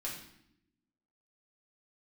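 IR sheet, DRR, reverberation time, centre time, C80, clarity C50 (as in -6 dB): -5.0 dB, not exponential, 37 ms, 8.0 dB, 4.5 dB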